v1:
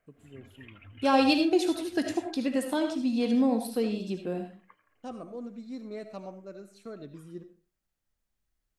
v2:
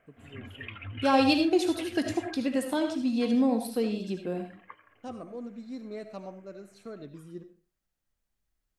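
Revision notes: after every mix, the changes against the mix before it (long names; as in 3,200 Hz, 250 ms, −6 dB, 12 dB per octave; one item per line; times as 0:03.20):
background +10.5 dB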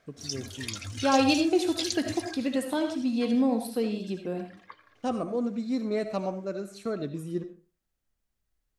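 first voice +10.5 dB
background: remove Chebyshev low-pass filter 3,000 Hz, order 6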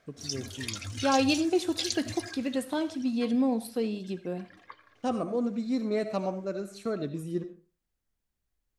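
second voice: send −10.5 dB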